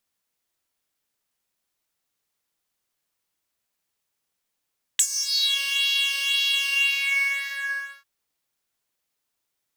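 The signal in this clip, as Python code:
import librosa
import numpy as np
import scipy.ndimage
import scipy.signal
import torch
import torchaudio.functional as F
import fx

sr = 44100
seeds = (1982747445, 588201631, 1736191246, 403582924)

y = fx.sub_patch_pwm(sr, seeds[0], note=73, wave2='saw', interval_st=0, detune_cents=16, level2_db=-9.0, sub_db=-15.0, noise_db=-30.0, kind='highpass', cutoff_hz=1400.0, q=9.3, env_oct=2.5, env_decay_s=0.6, env_sustain_pct=45, attack_ms=5.8, decay_s=0.07, sustain_db=-12, release_s=1.42, note_s=1.63, lfo_hz=1.9, width_pct=11, width_swing_pct=5)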